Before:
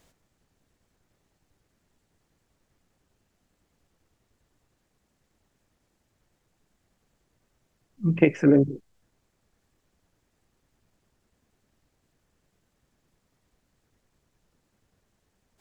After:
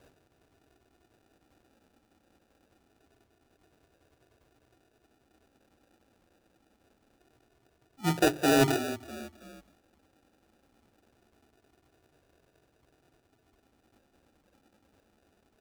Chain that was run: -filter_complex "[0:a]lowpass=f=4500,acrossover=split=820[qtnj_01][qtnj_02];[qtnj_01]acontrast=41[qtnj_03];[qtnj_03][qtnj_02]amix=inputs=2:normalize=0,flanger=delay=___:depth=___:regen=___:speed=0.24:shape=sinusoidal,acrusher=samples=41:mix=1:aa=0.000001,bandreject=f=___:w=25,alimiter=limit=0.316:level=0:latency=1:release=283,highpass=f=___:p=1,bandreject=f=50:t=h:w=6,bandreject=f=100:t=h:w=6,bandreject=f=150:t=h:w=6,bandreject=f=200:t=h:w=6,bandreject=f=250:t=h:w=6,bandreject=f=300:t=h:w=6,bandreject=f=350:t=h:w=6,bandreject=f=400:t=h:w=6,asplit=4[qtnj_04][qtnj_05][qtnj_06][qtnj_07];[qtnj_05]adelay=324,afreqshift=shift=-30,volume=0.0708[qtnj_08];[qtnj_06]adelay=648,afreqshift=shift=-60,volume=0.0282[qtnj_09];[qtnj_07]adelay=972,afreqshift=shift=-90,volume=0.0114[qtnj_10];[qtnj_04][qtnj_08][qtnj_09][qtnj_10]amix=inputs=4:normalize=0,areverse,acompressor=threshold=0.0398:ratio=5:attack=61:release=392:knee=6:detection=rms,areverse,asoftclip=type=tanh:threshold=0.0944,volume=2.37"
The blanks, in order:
2.4, 1, -2, 1900, 180